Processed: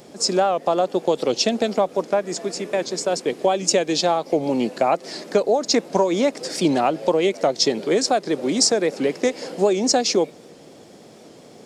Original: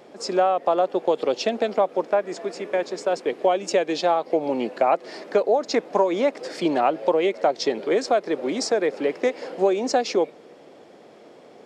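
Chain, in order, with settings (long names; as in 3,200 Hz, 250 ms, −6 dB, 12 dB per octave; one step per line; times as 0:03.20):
bass and treble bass +12 dB, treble +15 dB
wow of a warped record 78 rpm, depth 100 cents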